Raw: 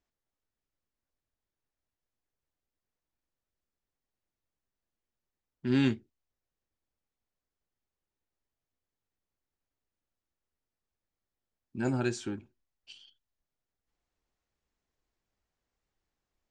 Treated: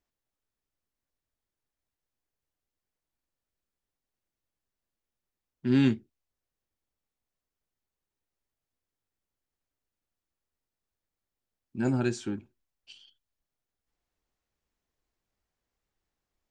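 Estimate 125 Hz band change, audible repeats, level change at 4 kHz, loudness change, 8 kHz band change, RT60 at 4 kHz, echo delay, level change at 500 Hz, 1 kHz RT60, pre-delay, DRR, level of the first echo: +3.0 dB, no echo, 0.0 dB, +3.0 dB, 0.0 dB, no reverb, no echo, +1.5 dB, no reverb, no reverb, no reverb, no echo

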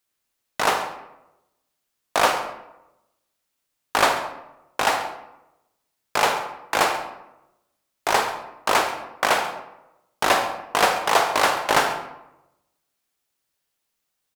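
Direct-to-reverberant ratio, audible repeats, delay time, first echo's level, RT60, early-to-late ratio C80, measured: 5.5 dB, 1, 137 ms, -16.5 dB, 0.90 s, 9.0 dB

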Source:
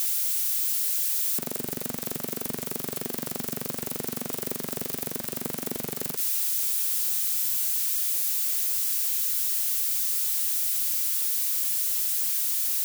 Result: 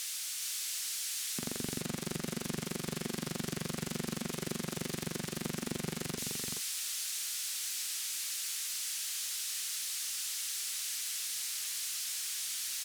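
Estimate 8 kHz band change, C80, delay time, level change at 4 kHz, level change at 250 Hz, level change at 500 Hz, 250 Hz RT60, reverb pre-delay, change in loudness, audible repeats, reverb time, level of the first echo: -6.0 dB, no reverb, 423 ms, -1.0 dB, -1.5 dB, -5.5 dB, no reverb, no reverb, -11.0 dB, 1, no reverb, -4.0 dB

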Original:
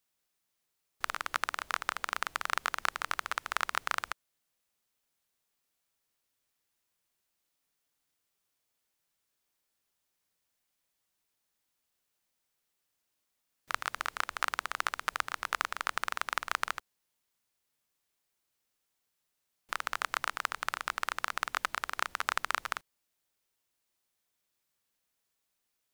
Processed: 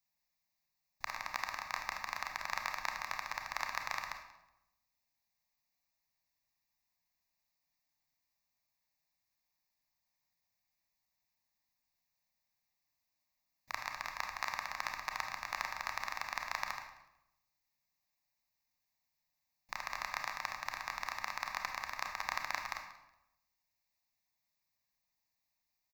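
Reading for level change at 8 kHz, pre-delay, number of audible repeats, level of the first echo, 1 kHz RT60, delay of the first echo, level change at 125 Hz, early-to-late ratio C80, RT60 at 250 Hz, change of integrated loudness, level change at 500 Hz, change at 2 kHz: -6.0 dB, 27 ms, 2, -19.0 dB, 0.85 s, 185 ms, -1.5 dB, 8.5 dB, 1.0 s, -5.5 dB, -5.5 dB, -5.5 dB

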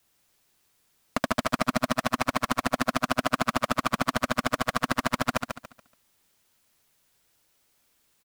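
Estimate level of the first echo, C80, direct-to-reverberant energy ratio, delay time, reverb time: -6.0 dB, no reverb, no reverb, 142 ms, no reverb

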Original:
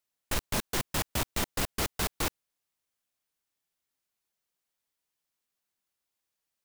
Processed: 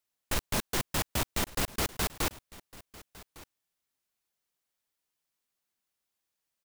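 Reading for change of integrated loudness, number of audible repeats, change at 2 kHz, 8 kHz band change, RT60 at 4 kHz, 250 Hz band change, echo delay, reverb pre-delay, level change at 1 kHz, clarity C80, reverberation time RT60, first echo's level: 0.0 dB, 1, 0.0 dB, 0.0 dB, no reverb, 0.0 dB, 1156 ms, no reverb, 0.0 dB, no reverb, no reverb, -20.0 dB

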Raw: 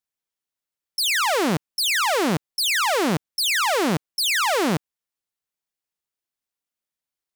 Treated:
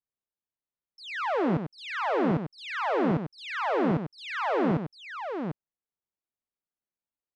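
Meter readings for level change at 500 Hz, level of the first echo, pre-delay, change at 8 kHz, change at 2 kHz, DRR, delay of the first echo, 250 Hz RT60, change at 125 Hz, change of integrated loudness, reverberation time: -3.5 dB, -8.5 dB, no reverb, under -30 dB, -10.5 dB, no reverb, 96 ms, no reverb, -2.0 dB, -8.0 dB, no reverb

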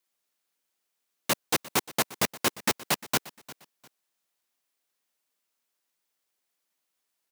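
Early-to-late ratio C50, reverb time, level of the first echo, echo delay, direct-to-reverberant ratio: no reverb, no reverb, -19.0 dB, 351 ms, no reverb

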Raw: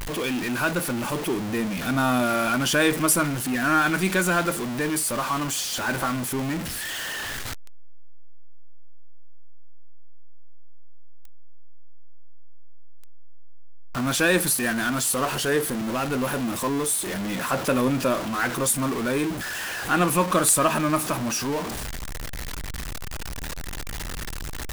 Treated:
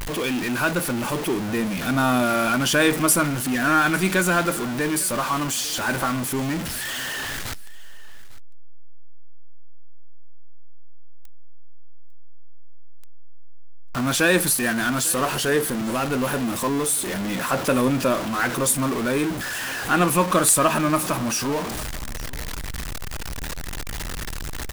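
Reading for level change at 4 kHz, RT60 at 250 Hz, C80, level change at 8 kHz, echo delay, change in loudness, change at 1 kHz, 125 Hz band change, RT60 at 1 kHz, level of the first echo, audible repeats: +2.0 dB, no reverb, no reverb, +2.0 dB, 850 ms, +2.0 dB, +2.0 dB, +2.0 dB, no reverb, -20.5 dB, 1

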